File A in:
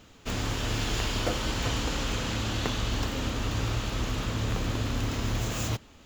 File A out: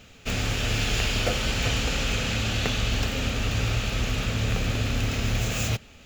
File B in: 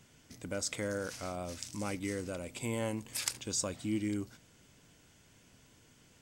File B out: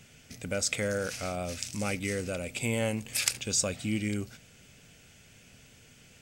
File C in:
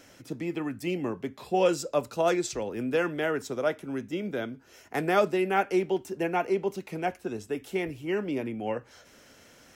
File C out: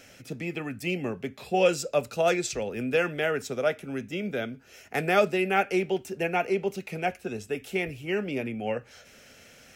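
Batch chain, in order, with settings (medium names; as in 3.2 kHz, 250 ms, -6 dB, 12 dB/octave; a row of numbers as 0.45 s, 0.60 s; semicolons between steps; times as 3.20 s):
graphic EQ with 31 bands 315 Hz -9 dB, 1 kHz -10 dB, 2.5 kHz +6 dB; peak normalisation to -9 dBFS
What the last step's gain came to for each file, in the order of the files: +4.0 dB, +6.5 dB, +2.5 dB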